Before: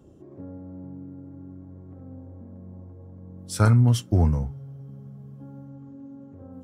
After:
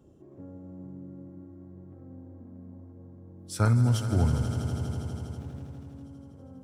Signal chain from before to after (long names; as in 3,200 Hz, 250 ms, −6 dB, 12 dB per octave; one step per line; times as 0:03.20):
echo that builds up and dies away 81 ms, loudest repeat 5, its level −13.5 dB
0:05.38–0:06.04: windowed peak hold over 9 samples
level −5 dB